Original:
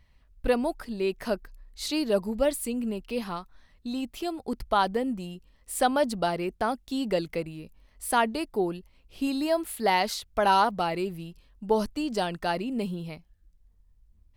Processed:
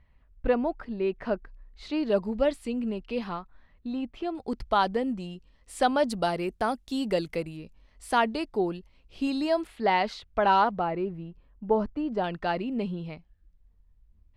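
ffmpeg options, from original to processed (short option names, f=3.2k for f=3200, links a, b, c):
-af "asetnsamples=n=441:p=0,asendcmd='2.03 lowpass f 3900;3.36 lowpass f 2300;4.35 lowpass f 6000;6.1 lowpass f 12000;7.57 lowpass f 6100;9.67 lowpass f 3000;10.79 lowpass f 1500;12.24 lowpass f 3300',lowpass=2.2k"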